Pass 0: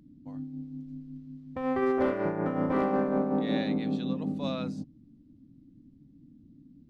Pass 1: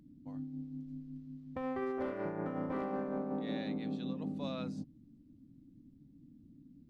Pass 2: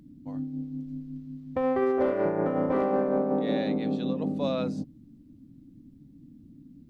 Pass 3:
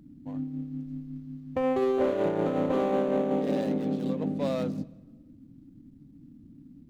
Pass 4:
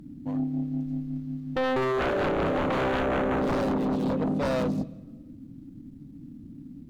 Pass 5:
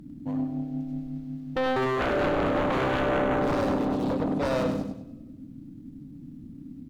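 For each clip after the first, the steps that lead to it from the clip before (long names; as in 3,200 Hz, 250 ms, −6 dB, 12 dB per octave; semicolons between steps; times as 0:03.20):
downward compressor 3 to 1, threshold −32 dBFS, peak gain reduction 8 dB; level −3.5 dB
dynamic equaliser 520 Hz, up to +7 dB, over −51 dBFS, Q 1.1; level +7.5 dB
running median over 25 samples; on a send at −22.5 dB: convolution reverb RT60 1.2 s, pre-delay 121 ms
sine wavefolder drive 10 dB, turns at −15.5 dBFS; level −7 dB
repeating echo 99 ms, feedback 36%, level −6.5 dB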